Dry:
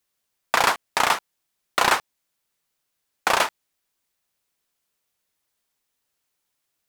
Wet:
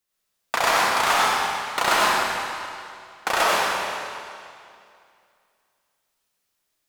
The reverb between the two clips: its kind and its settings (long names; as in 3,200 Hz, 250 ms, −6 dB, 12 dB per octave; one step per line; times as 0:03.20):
comb and all-pass reverb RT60 2.4 s, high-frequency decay 0.95×, pre-delay 45 ms, DRR −6.5 dB
level −4.5 dB